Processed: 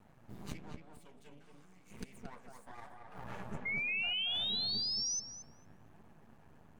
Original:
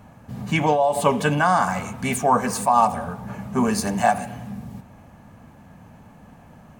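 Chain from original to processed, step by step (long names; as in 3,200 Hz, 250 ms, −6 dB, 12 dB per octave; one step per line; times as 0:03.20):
hum removal 87.41 Hz, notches 15
noise reduction from a noise print of the clip's start 8 dB
0:00.71–0:02.12: flat-topped bell 940 Hz −15 dB
0:03.40–0:04.30: treble cut that deepens with the level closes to 2,600 Hz, closed at −17 dBFS
gate with flip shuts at −22 dBFS, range −27 dB
flanger 0.99 Hz, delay 3.9 ms, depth 9.6 ms, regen +33%
half-wave rectification
0:03.65–0:05.20: sound drawn into the spectrogram rise 2,100–6,200 Hz −36 dBFS
feedback echo with a low-pass in the loop 226 ms, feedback 27%, low-pass 2,200 Hz, level −3.5 dB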